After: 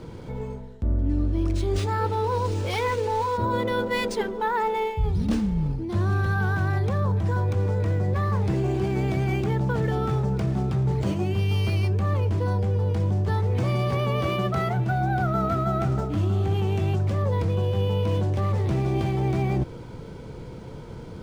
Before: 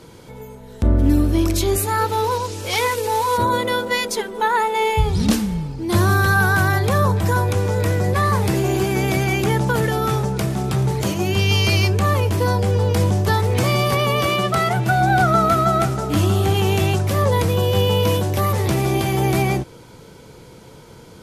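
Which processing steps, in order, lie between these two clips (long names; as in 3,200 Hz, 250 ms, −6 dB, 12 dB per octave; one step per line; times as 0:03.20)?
spectral tilt −2 dB per octave
reversed playback
downward compressor 5 to 1, threshold −22 dBFS, peak gain reduction 16.5 dB
reversed playback
linearly interpolated sample-rate reduction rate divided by 3×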